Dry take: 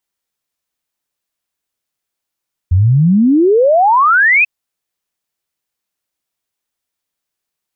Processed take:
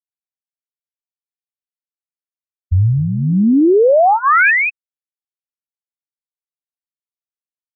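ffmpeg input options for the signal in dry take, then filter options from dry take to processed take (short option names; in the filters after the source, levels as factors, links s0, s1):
-f lavfi -i "aevalsrc='0.473*clip(min(t,1.74-t)/0.01,0,1)*sin(2*PI*84*1.74/log(2600/84)*(exp(log(2600/84)*t/1.74)-1))':d=1.74:s=44100"
-filter_complex "[0:a]afftfilt=real='re*gte(hypot(re,im),1.58)':imag='im*gte(hypot(re,im),1.58)':win_size=1024:overlap=0.75,asuperstop=centerf=980:order=4:qfactor=4.9,acrossover=split=150|2400[s0][s1][s2];[s2]adelay=60[s3];[s1]adelay=250[s4];[s0][s4][s3]amix=inputs=3:normalize=0"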